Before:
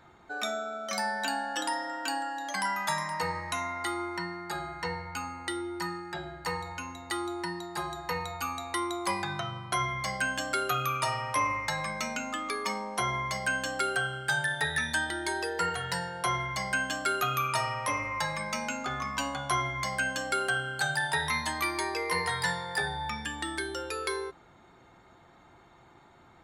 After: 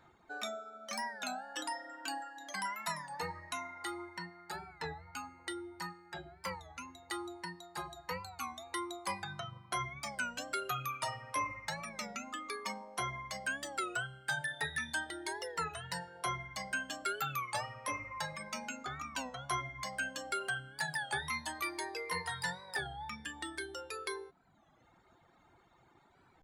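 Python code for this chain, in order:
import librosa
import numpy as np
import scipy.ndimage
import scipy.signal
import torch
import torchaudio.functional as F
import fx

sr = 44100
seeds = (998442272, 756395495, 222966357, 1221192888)

y = fx.dereverb_blind(x, sr, rt60_s=1.0)
y = fx.record_warp(y, sr, rpm=33.33, depth_cents=160.0)
y = y * 10.0 ** (-6.5 / 20.0)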